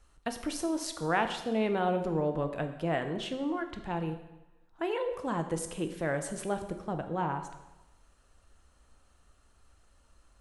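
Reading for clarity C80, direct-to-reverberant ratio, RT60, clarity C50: 11.0 dB, 6.5 dB, 1.0 s, 9.5 dB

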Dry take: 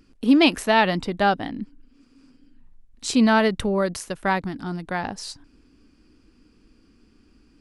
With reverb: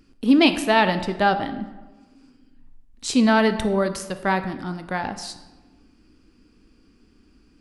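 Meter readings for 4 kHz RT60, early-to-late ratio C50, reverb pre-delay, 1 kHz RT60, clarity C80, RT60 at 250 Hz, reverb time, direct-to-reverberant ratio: 0.75 s, 11.5 dB, 13 ms, 1.2 s, 13.0 dB, 1.3 s, 1.2 s, 9.0 dB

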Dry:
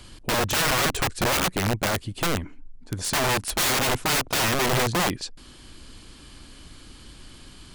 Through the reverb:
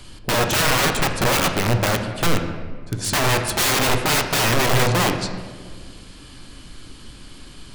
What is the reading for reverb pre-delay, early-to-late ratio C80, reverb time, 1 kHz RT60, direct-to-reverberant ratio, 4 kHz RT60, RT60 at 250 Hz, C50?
3 ms, 8.5 dB, 1.7 s, 1.5 s, 4.5 dB, 0.95 s, 2.2 s, 7.0 dB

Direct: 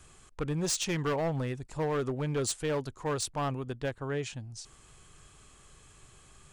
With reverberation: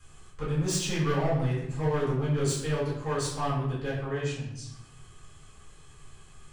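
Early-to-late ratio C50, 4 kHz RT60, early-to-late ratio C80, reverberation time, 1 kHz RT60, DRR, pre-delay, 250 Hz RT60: 2.5 dB, 0.60 s, 5.5 dB, 0.85 s, 0.85 s, -9.0 dB, 4 ms, 1.2 s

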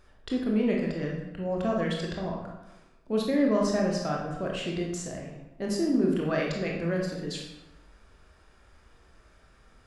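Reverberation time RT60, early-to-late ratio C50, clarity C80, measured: 1.0 s, 2.0 dB, 5.0 dB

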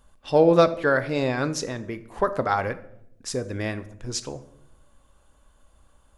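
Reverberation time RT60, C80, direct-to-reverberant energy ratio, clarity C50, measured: 0.75 s, 18.5 dB, 11.0 dB, 15.5 dB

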